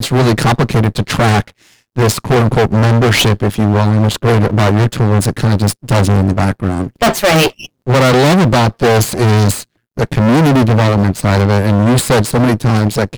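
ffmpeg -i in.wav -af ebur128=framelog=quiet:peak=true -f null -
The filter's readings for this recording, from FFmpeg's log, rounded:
Integrated loudness:
  I:         -12.1 LUFS
  Threshold: -22.3 LUFS
Loudness range:
  LRA:         1.4 LU
  Threshold: -32.2 LUFS
  LRA low:   -13.0 LUFS
  LRA high:  -11.6 LUFS
True peak:
  Peak:       -1.7 dBFS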